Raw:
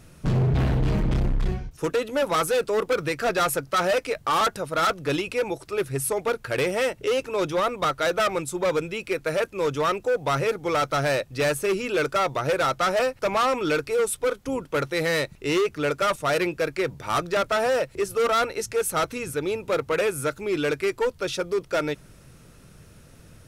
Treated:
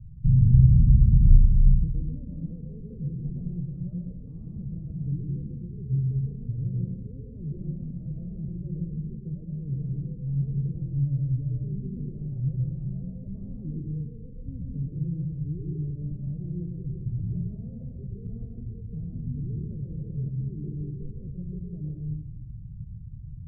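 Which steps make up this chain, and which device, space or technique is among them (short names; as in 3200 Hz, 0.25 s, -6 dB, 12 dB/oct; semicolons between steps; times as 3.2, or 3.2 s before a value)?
club heard from the street (limiter -19.5 dBFS, peak gain reduction 4.5 dB; LPF 140 Hz 24 dB/oct; reverb RT60 0.90 s, pre-delay 0.106 s, DRR -0.5 dB); gain +9 dB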